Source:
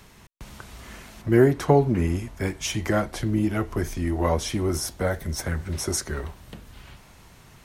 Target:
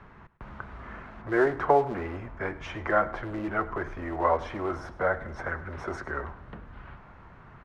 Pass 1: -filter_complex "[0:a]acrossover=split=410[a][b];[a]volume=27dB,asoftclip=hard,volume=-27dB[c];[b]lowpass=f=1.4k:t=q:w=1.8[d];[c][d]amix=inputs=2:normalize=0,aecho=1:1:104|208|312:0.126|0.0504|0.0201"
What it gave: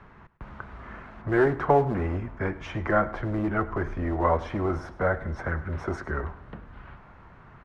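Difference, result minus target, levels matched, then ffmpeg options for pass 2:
overloaded stage: distortion -5 dB
-filter_complex "[0:a]acrossover=split=410[a][b];[a]volume=38.5dB,asoftclip=hard,volume=-38.5dB[c];[b]lowpass=f=1.4k:t=q:w=1.8[d];[c][d]amix=inputs=2:normalize=0,aecho=1:1:104|208|312:0.126|0.0504|0.0201"

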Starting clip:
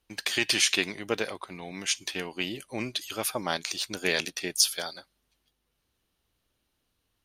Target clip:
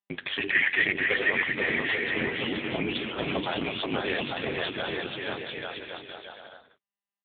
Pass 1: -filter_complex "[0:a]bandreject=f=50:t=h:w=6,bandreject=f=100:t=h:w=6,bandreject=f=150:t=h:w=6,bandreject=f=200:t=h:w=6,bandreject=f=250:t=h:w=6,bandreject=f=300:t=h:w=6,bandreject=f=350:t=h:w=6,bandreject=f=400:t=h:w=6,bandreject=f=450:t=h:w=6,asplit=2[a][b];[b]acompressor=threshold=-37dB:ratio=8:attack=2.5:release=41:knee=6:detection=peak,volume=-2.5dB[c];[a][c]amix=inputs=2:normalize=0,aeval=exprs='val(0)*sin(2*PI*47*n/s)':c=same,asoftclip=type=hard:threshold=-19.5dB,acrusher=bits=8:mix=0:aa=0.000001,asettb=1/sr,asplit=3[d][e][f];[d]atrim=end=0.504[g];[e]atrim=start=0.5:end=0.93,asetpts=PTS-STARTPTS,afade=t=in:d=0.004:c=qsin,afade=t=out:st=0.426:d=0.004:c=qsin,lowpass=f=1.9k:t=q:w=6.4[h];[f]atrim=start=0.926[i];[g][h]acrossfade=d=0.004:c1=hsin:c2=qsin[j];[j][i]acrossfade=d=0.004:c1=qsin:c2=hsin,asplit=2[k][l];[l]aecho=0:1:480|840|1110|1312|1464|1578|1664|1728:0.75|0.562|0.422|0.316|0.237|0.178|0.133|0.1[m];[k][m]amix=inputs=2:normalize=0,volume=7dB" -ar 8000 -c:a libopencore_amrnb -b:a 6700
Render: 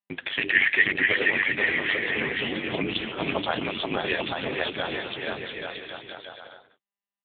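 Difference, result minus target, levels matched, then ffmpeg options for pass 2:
hard clip: distortion -6 dB
-filter_complex "[0:a]bandreject=f=50:t=h:w=6,bandreject=f=100:t=h:w=6,bandreject=f=150:t=h:w=6,bandreject=f=200:t=h:w=6,bandreject=f=250:t=h:w=6,bandreject=f=300:t=h:w=6,bandreject=f=350:t=h:w=6,bandreject=f=400:t=h:w=6,bandreject=f=450:t=h:w=6,asplit=2[a][b];[b]acompressor=threshold=-37dB:ratio=8:attack=2.5:release=41:knee=6:detection=peak,volume=-2.5dB[c];[a][c]amix=inputs=2:normalize=0,aeval=exprs='val(0)*sin(2*PI*47*n/s)':c=same,asoftclip=type=hard:threshold=-26.5dB,acrusher=bits=8:mix=0:aa=0.000001,asettb=1/sr,asplit=3[d][e][f];[d]atrim=end=0.504[g];[e]atrim=start=0.5:end=0.93,asetpts=PTS-STARTPTS,afade=t=in:d=0.004:c=qsin,afade=t=out:st=0.426:d=0.004:c=qsin,lowpass=f=1.9k:t=q:w=6.4[h];[f]atrim=start=0.926[i];[g][h]acrossfade=d=0.004:c1=hsin:c2=qsin[j];[j][i]acrossfade=d=0.004:c1=qsin:c2=hsin,asplit=2[k][l];[l]aecho=0:1:480|840|1110|1312|1464|1578|1664|1728:0.75|0.562|0.422|0.316|0.237|0.178|0.133|0.1[m];[k][m]amix=inputs=2:normalize=0,volume=7dB" -ar 8000 -c:a libopencore_amrnb -b:a 6700

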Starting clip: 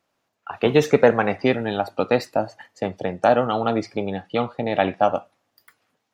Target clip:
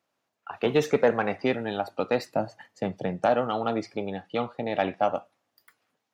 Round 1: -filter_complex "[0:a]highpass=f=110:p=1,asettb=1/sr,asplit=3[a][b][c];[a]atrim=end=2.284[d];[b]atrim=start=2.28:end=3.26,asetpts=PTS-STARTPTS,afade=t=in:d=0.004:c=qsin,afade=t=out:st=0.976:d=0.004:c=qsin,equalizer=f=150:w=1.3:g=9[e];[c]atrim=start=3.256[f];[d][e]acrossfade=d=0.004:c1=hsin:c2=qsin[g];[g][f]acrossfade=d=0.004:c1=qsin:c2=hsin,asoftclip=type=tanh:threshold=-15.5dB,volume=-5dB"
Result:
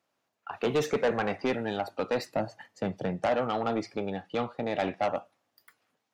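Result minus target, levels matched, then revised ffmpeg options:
soft clip: distortion +14 dB
-filter_complex "[0:a]highpass=f=110:p=1,asettb=1/sr,asplit=3[a][b][c];[a]atrim=end=2.284[d];[b]atrim=start=2.28:end=3.26,asetpts=PTS-STARTPTS,afade=t=in:d=0.004:c=qsin,afade=t=out:st=0.976:d=0.004:c=qsin,equalizer=f=150:w=1.3:g=9[e];[c]atrim=start=3.256[f];[d][e]acrossfade=d=0.004:c1=hsin:c2=qsin[g];[g][f]acrossfade=d=0.004:c1=qsin:c2=hsin,asoftclip=type=tanh:threshold=-4dB,volume=-5dB"

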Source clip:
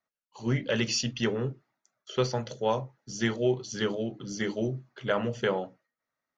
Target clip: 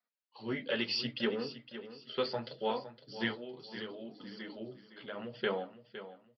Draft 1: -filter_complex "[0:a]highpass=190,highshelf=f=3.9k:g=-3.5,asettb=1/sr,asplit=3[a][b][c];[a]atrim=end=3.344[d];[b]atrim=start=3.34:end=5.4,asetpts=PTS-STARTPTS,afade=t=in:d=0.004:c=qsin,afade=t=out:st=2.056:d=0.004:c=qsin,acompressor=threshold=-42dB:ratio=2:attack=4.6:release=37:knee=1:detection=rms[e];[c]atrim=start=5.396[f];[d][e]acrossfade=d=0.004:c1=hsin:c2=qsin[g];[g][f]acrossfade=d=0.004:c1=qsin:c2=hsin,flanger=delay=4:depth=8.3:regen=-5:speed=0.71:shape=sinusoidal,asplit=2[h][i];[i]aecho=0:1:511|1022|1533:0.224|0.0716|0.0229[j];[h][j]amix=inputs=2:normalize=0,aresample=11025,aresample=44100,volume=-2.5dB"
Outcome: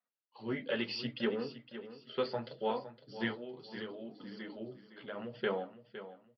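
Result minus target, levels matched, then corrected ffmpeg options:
8000 Hz band -5.5 dB
-filter_complex "[0:a]highpass=190,highshelf=f=3.9k:g=7.5,asettb=1/sr,asplit=3[a][b][c];[a]atrim=end=3.344[d];[b]atrim=start=3.34:end=5.4,asetpts=PTS-STARTPTS,afade=t=in:d=0.004:c=qsin,afade=t=out:st=2.056:d=0.004:c=qsin,acompressor=threshold=-42dB:ratio=2:attack=4.6:release=37:knee=1:detection=rms[e];[c]atrim=start=5.396[f];[d][e]acrossfade=d=0.004:c1=hsin:c2=qsin[g];[g][f]acrossfade=d=0.004:c1=qsin:c2=hsin,flanger=delay=4:depth=8.3:regen=-5:speed=0.71:shape=sinusoidal,asplit=2[h][i];[i]aecho=0:1:511|1022|1533:0.224|0.0716|0.0229[j];[h][j]amix=inputs=2:normalize=0,aresample=11025,aresample=44100,volume=-2.5dB"

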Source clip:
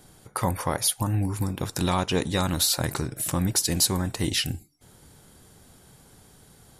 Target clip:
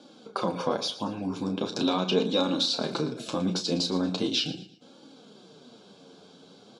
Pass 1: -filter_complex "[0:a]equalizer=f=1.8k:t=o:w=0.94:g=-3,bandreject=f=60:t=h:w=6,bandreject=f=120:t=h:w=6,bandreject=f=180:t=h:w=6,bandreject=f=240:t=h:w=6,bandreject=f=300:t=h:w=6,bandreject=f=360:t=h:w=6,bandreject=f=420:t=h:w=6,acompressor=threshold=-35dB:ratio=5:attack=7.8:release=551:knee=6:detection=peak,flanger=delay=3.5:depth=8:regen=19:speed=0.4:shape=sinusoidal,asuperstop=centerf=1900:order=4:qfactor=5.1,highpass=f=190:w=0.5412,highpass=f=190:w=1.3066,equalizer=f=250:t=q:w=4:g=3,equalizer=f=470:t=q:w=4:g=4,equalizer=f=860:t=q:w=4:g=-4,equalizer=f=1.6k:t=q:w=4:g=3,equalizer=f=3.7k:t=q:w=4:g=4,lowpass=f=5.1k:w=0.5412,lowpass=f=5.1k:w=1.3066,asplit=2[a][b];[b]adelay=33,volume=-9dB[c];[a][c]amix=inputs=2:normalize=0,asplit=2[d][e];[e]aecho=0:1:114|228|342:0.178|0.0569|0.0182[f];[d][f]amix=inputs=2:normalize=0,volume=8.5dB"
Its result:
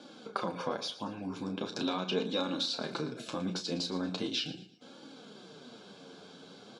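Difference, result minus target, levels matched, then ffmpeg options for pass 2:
compressor: peak gain reduction +8 dB; 2000 Hz band +4.0 dB
-filter_complex "[0:a]equalizer=f=1.8k:t=o:w=0.94:g=-10,bandreject=f=60:t=h:w=6,bandreject=f=120:t=h:w=6,bandreject=f=180:t=h:w=6,bandreject=f=240:t=h:w=6,bandreject=f=300:t=h:w=6,bandreject=f=360:t=h:w=6,bandreject=f=420:t=h:w=6,acompressor=threshold=-25.5dB:ratio=5:attack=7.8:release=551:knee=6:detection=peak,flanger=delay=3.5:depth=8:regen=19:speed=0.4:shape=sinusoidal,asuperstop=centerf=1900:order=4:qfactor=5.1,highpass=f=190:w=0.5412,highpass=f=190:w=1.3066,equalizer=f=250:t=q:w=4:g=3,equalizer=f=470:t=q:w=4:g=4,equalizer=f=860:t=q:w=4:g=-4,equalizer=f=1.6k:t=q:w=4:g=3,equalizer=f=3.7k:t=q:w=4:g=4,lowpass=f=5.1k:w=0.5412,lowpass=f=5.1k:w=1.3066,asplit=2[a][b];[b]adelay=33,volume=-9dB[c];[a][c]amix=inputs=2:normalize=0,asplit=2[d][e];[e]aecho=0:1:114|228|342:0.178|0.0569|0.0182[f];[d][f]amix=inputs=2:normalize=0,volume=8.5dB"

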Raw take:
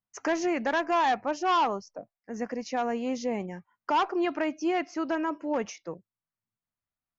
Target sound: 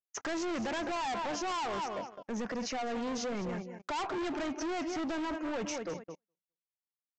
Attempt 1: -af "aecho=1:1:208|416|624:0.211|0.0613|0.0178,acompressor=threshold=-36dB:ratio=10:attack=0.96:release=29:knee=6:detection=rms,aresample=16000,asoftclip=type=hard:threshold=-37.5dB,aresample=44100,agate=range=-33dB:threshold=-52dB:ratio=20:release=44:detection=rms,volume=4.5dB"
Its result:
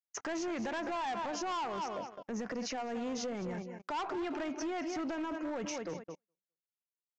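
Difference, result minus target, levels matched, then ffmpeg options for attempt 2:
compressor: peak gain reduction +7.5 dB
-af "aecho=1:1:208|416|624:0.211|0.0613|0.0178,acompressor=threshold=-27.5dB:ratio=10:attack=0.96:release=29:knee=6:detection=rms,aresample=16000,asoftclip=type=hard:threshold=-37.5dB,aresample=44100,agate=range=-33dB:threshold=-52dB:ratio=20:release=44:detection=rms,volume=4.5dB"

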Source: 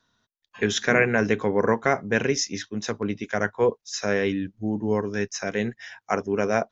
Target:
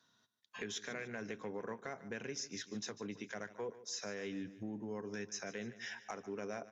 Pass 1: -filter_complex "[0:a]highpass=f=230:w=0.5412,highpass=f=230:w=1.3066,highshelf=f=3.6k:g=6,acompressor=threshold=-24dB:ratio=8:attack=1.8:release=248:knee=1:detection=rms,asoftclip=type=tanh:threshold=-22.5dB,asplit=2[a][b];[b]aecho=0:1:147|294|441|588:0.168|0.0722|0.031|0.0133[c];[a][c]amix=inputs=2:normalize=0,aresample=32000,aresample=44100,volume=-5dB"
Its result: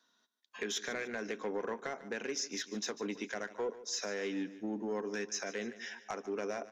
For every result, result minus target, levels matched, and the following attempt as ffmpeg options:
125 Hz band -7.5 dB; compressor: peak gain reduction -6.5 dB
-filter_complex "[0:a]highpass=f=110:w=0.5412,highpass=f=110:w=1.3066,highshelf=f=3.6k:g=6,acompressor=threshold=-24dB:ratio=8:attack=1.8:release=248:knee=1:detection=rms,asoftclip=type=tanh:threshold=-22.5dB,asplit=2[a][b];[b]aecho=0:1:147|294|441|588:0.168|0.0722|0.031|0.0133[c];[a][c]amix=inputs=2:normalize=0,aresample=32000,aresample=44100,volume=-5dB"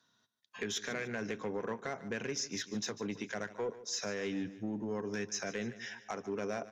compressor: peak gain reduction -6.5 dB
-filter_complex "[0:a]highpass=f=110:w=0.5412,highpass=f=110:w=1.3066,highshelf=f=3.6k:g=6,acompressor=threshold=-31.5dB:ratio=8:attack=1.8:release=248:knee=1:detection=rms,asoftclip=type=tanh:threshold=-22.5dB,asplit=2[a][b];[b]aecho=0:1:147|294|441|588:0.168|0.0722|0.031|0.0133[c];[a][c]amix=inputs=2:normalize=0,aresample=32000,aresample=44100,volume=-5dB"

